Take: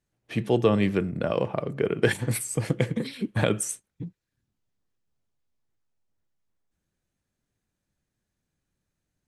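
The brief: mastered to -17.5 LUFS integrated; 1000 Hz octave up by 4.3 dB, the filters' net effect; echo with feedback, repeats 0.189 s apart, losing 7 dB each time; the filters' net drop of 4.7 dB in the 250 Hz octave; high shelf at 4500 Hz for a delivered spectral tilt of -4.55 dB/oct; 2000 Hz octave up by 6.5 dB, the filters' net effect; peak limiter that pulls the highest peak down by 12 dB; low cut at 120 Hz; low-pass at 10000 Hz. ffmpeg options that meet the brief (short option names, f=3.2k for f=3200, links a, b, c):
-af "highpass=120,lowpass=10k,equalizer=f=250:t=o:g=-6.5,equalizer=f=1k:t=o:g=4,equalizer=f=2k:t=o:g=7.5,highshelf=f=4.5k:g=-3,alimiter=limit=-16.5dB:level=0:latency=1,aecho=1:1:189|378|567|756|945:0.447|0.201|0.0905|0.0407|0.0183,volume=12.5dB"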